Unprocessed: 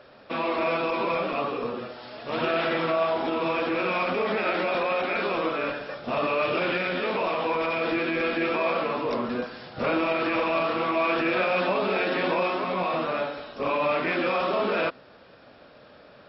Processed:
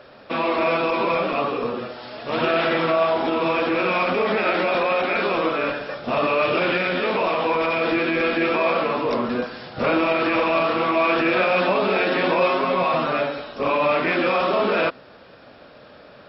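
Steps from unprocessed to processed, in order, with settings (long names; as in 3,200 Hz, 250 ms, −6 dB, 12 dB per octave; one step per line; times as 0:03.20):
0:12.40–0:13.41: comb filter 7.4 ms, depth 52%
level +5 dB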